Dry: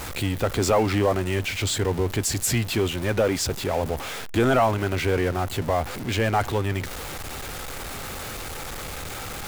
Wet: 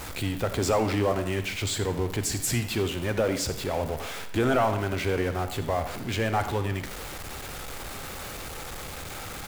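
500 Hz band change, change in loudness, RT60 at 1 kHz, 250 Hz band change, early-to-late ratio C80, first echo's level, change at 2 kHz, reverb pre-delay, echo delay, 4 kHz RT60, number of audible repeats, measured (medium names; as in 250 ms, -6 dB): -3.5 dB, -3.5 dB, 0.70 s, -3.5 dB, 11.5 dB, -15.5 dB, -3.5 dB, 38 ms, 88 ms, 0.55 s, 1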